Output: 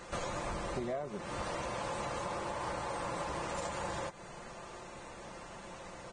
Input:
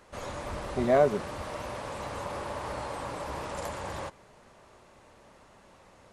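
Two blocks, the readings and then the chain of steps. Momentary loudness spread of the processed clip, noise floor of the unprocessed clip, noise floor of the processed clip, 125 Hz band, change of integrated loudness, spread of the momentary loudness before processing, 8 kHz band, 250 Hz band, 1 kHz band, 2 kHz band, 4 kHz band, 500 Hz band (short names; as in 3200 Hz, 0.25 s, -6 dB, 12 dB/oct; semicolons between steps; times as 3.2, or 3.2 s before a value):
10 LU, -58 dBFS, -49 dBFS, -4.5 dB, -7.5 dB, 14 LU, +1.0 dB, -6.5 dB, -3.0 dB, -2.0 dB, -0.5 dB, -9.0 dB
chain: comb 5.8 ms, depth 44%; compressor 16:1, threshold -42 dBFS, peak gain reduction 25 dB; gain +7.5 dB; Vorbis 16 kbps 22050 Hz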